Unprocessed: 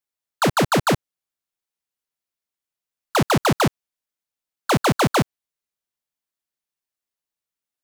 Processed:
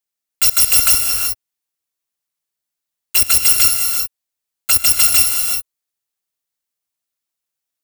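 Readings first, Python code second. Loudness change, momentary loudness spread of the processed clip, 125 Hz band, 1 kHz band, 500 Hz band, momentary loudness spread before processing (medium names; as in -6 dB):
+9.0 dB, 11 LU, -12.5 dB, -10.0 dB, -17.0 dB, 7 LU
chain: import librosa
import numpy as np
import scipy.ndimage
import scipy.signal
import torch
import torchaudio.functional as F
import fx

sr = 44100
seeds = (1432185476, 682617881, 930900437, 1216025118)

y = fx.bit_reversed(x, sr, seeds[0], block=256)
y = fx.high_shelf(y, sr, hz=3900.0, db=6.0)
y = fx.rev_gated(y, sr, seeds[1], gate_ms=400, shape='rising', drr_db=3.0)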